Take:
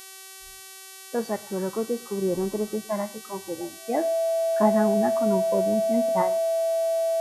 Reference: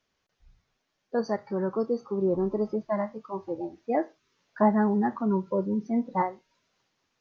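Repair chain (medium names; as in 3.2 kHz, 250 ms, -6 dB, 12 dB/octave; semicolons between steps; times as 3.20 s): de-click; de-hum 382.6 Hz, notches 33; band-stop 660 Hz, Q 30; inverse comb 109 ms -22.5 dB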